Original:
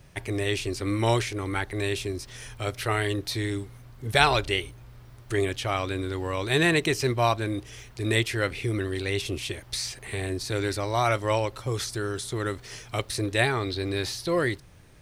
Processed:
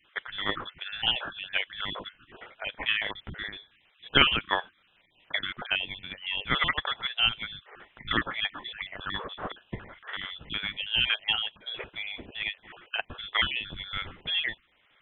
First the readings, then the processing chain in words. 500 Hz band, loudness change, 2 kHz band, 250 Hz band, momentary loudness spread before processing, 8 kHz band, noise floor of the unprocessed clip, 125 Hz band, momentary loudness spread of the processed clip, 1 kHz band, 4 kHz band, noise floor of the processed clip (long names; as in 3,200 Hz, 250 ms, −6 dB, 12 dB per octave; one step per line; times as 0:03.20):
−14.5 dB, −2.0 dB, 0.0 dB, −12.0 dB, 10 LU, below −40 dB, −49 dBFS, −15.5 dB, 14 LU, −5.5 dB, +4.5 dB, −66 dBFS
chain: time-frequency cells dropped at random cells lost 25%
high-pass filter 620 Hz 12 dB per octave
transient designer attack +4 dB, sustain −3 dB
voice inversion scrambler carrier 3,800 Hz